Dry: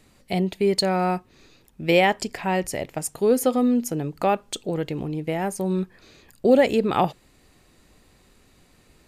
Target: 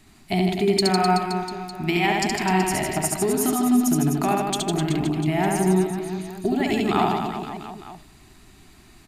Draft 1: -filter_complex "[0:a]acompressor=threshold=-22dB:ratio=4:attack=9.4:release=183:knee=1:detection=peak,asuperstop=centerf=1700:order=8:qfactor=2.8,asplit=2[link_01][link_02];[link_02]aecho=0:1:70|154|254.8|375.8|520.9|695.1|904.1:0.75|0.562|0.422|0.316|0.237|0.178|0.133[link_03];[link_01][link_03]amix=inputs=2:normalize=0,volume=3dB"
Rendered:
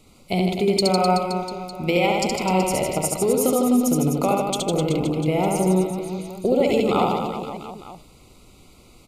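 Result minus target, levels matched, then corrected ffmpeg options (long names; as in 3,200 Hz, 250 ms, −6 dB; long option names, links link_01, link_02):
2,000 Hz band −4.0 dB
-filter_complex "[0:a]acompressor=threshold=-22dB:ratio=4:attack=9.4:release=183:knee=1:detection=peak,asuperstop=centerf=510:order=8:qfactor=2.8,asplit=2[link_01][link_02];[link_02]aecho=0:1:70|154|254.8|375.8|520.9|695.1|904.1:0.75|0.562|0.422|0.316|0.237|0.178|0.133[link_03];[link_01][link_03]amix=inputs=2:normalize=0,volume=3dB"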